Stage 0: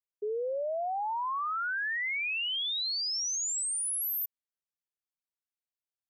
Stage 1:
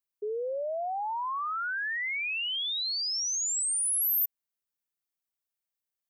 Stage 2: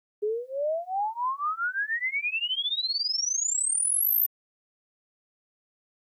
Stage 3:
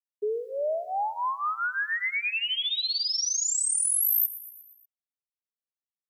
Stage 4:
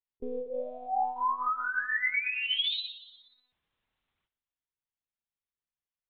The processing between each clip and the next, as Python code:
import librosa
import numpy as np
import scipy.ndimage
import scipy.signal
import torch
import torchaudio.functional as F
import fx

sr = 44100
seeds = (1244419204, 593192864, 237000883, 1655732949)

y1 = fx.high_shelf(x, sr, hz=11000.0, db=9.5)
y2 = y1 + 0.94 * np.pad(y1, (int(4.9 * sr / 1000.0), 0))[:len(y1)]
y2 = fx.quant_dither(y2, sr, seeds[0], bits=12, dither='none')
y3 = fx.echo_feedback(y2, sr, ms=119, feedback_pct=57, wet_db=-16)
y4 = fx.lpc_monotone(y3, sr, seeds[1], pitch_hz=250.0, order=8)